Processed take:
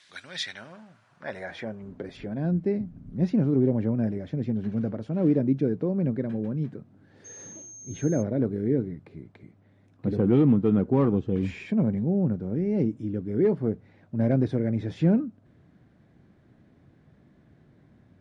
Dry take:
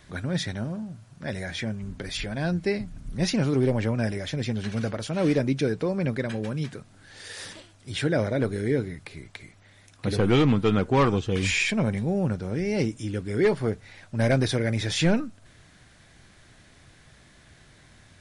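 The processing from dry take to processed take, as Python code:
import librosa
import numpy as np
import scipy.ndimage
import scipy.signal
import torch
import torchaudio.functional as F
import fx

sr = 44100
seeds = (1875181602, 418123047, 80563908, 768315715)

y = fx.filter_sweep_bandpass(x, sr, from_hz=3900.0, to_hz=230.0, start_s=0.19, end_s=2.47, q=1.0)
y = fx.dmg_tone(y, sr, hz=6400.0, level_db=-45.0, at=(7.24, 8.21), fade=0.02)
y = y * librosa.db_to_amplitude(3.0)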